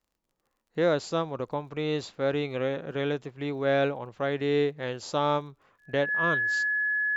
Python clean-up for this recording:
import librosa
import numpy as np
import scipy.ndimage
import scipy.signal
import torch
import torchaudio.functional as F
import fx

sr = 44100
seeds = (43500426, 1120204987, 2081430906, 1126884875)

y = fx.fix_declick_ar(x, sr, threshold=6.5)
y = fx.notch(y, sr, hz=1700.0, q=30.0)